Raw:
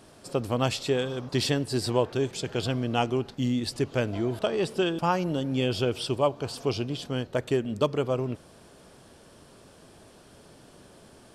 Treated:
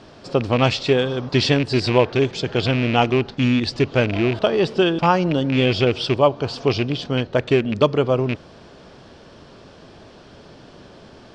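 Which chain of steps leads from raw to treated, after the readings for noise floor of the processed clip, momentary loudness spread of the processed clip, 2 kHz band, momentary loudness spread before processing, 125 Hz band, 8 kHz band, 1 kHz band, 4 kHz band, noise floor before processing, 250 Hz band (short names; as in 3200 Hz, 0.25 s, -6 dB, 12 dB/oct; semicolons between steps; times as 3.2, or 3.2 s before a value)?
-46 dBFS, 5 LU, +11.0 dB, 4 LU, +8.5 dB, n/a, +8.5 dB, +8.5 dB, -54 dBFS, +8.5 dB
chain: rattling part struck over -28 dBFS, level -24 dBFS; LPF 5400 Hz 24 dB/oct; gain +8.5 dB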